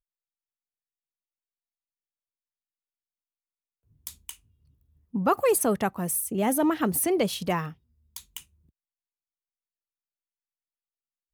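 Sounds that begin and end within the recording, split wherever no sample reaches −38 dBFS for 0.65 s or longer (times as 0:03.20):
0:04.07–0:04.32
0:05.14–0:08.39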